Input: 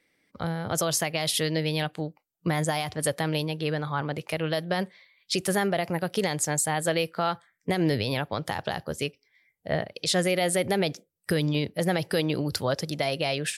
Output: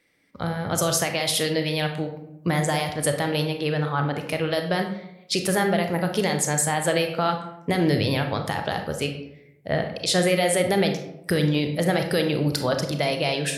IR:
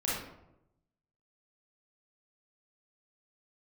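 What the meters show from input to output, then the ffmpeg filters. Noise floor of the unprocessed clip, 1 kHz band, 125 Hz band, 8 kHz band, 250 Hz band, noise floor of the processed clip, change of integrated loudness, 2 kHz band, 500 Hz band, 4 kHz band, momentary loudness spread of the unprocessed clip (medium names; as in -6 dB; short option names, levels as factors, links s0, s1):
-75 dBFS, +3.5 dB, +4.0 dB, +3.0 dB, +4.0 dB, -50 dBFS, +3.5 dB, +3.5 dB, +4.0 dB, +3.0 dB, 7 LU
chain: -filter_complex "[0:a]asplit=2[s0][s1];[1:a]atrim=start_sample=2205[s2];[s1][s2]afir=irnorm=-1:irlink=0,volume=0.376[s3];[s0][s3]amix=inputs=2:normalize=0"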